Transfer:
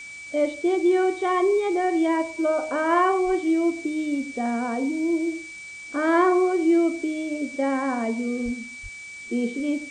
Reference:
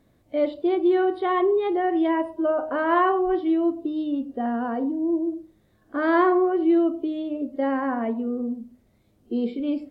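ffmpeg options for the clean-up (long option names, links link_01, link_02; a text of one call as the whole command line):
ffmpeg -i in.wav -filter_complex "[0:a]bandreject=frequency=2300:width=30,asplit=3[link_01][link_02][link_03];[link_01]afade=type=out:start_time=8.44:duration=0.02[link_04];[link_02]highpass=frequency=140:width=0.5412,highpass=frequency=140:width=1.3066,afade=type=in:start_time=8.44:duration=0.02,afade=type=out:start_time=8.56:duration=0.02[link_05];[link_03]afade=type=in:start_time=8.56:duration=0.02[link_06];[link_04][link_05][link_06]amix=inputs=3:normalize=0,asplit=3[link_07][link_08][link_09];[link_07]afade=type=out:start_time=8.82:duration=0.02[link_10];[link_08]highpass=frequency=140:width=0.5412,highpass=frequency=140:width=1.3066,afade=type=in:start_time=8.82:duration=0.02,afade=type=out:start_time=8.94:duration=0.02[link_11];[link_09]afade=type=in:start_time=8.94:duration=0.02[link_12];[link_10][link_11][link_12]amix=inputs=3:normalize=0,afftdn=noise_reduction=21:noise_floor=-39" out.wav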